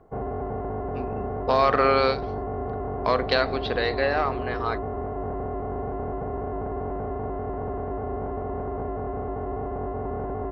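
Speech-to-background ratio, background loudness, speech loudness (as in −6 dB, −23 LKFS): 7.0 dB, −31.5 LKFS, −24.5 LKFS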